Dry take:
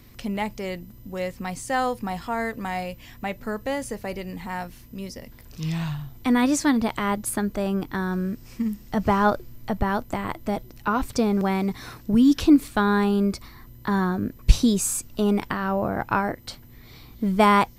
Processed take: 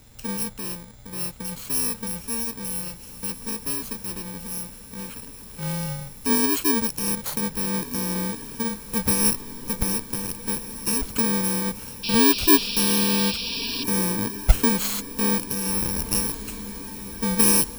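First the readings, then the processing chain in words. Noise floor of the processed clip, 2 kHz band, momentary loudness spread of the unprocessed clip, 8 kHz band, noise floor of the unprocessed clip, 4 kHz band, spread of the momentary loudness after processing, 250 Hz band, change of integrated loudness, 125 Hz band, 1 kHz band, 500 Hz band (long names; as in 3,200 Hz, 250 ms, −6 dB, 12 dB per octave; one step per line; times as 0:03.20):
−42 dBFS, −2.0 dB, 14 LU, +9.5 dB, −47 dBFS, +8.5 dB, 14 LU, −3.5 dB, +1.5 dB, −2.0 dB, −7.5 dB, −4.0 dB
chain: samples in bit-reversed order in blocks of 64 samples
feedback delay with all-pass diffusion 1,620 ms, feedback 62%, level −14 dB
sound drawn into the spectrogram noise, 0:12.03–0:13.84, 2,300–5,700 Hz −29 dBFS
level −1 dB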